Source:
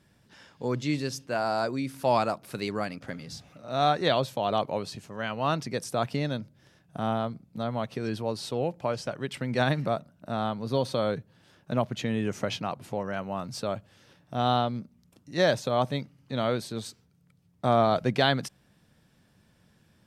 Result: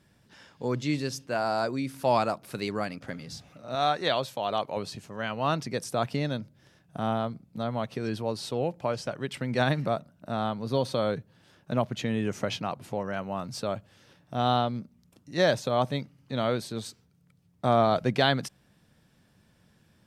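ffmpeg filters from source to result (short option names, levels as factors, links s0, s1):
-filter_complex "[0:a]asettb=1/sr,asplit=3[s0][s1][s2];[s0]atrim=end=3.754[s3];[s1]atrim=start=3.75:end=4.77,asetpts=PTS-STARTPTS,afade=t=in:d=0.004:c=qsin,afade=t=out:st=1.016:d=0.004:c=qsin,lowshelf=f=430:g=-7.5[s4];[s2]atrim=start=4.766[s5];[s3][s4]acrossfade=d=0.004:c1=hsin:c2=qsin[s6];[s6][s5]acrossfade=d=0.004:c1=qsin:c2=hsin"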